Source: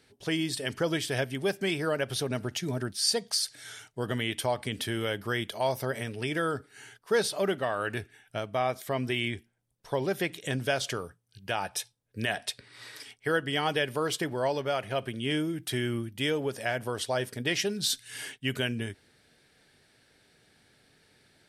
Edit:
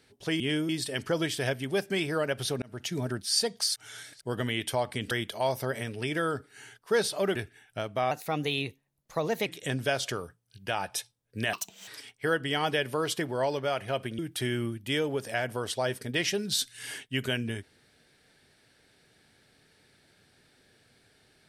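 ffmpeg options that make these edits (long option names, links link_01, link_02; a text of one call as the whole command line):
ffmpeg -i in.wav -filter_complex "[0:a]asplit=13[link_01][link_02][link_03][link_04][link_05][link_06][link_07][link_08][link_09][link_10][link_11][link_12][link_13];[link_01]atrim=end=0.402[link_14];[link_02]atrim=start=15.208:end=15.502[link_15];[link_03]atrim=start=0.398:end=2.33,asetpts=PTS-STARTPTS,afade=type=out:start_time=1.928:duration=0.004:curve=hsin[link_16];[link_04]atrim=start=2.33:end=3.472,asetpts=PTS-STARTPTS,afade=type=in:duration=0.28[link_17];[link_05]atrim=start=3.468:end=3.922,asetpts=PTS-STARTPTS,areverse[link_18];[link_06]atrim=start=3.918:end=4.822[link_19];[link_07]atrim=start=5.308:end=7.552[link_20];[link_08]atrim=start=7.928:end=8.694[link_21];[link_09]atrim=start=8.69:end=10.27,asetpts=PTS-STARTPTS,asetrate=51597,aresample=44100[link_22];[link_10]atrim=start=10.266:end=12.344[link_23];[link_11]atrim=start=12.34:end=12.9,asetpts=PTS-STARTPTS,asetrate=71442,aresample=44100,atrim=end_sample=15244,asetpts=PTS-STARTPTS[link_24];[link_12]atrim=start=12.896:end=15.212[link_25];[link_13]atrim=start=15.498[link_26];[link_14][link_15]acrossfade=duration=0.004:curve1=hsin:curve2=hsin[link_27];[link_16][link_17]concat=n=2:v=0:a=1[link_28];[link_27][link_28]acrossfade=duration=0.004:curve1=hsin:curve2=hsin[link_29];[link_29][link_18]acrossfade=duration=0.004:curve1=hsin:curve2=hsin[link_30];[link_30][link_19]acrossfade=duration=0.004:curve1=hsin:curve2=hsin[link_31];[link_31][link_20]acrossfade=duration=0.004:curve1=hsin:curve2=hsin[link_32];[link_32][link_21]acrossfade=duration=0.004:curve1=hsin:curve2=hsin[link_33];[link_33][link_22]acrossfade=duration=0.004:curve1=hsin:curve2=hsin[link_34];[link_34][link_23]acrossfade=duration=0.004:curve1=hsin:curve2=hsin[link_35];[link_35][link_24]acrossfade=duration=0.004:curve1=hsin:curve2=hsin[link_36];[link_36][link_25]acrossfade=duration=0.004:curve1=hsin:curve2=hsin[link_37];[link_37][link_26]acrossfade=duration=0.004:curve1=hsin:curve2=hsin" out.wav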